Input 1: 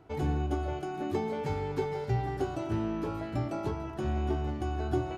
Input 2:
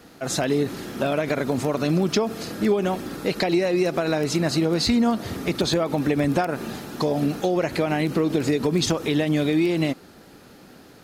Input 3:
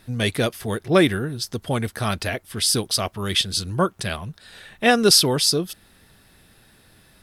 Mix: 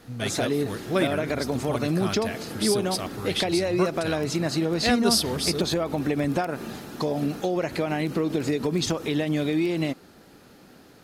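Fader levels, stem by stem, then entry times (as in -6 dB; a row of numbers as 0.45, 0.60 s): -14.5, -3.5, -8.0 dB; 1.05, 0.00, 0.00 s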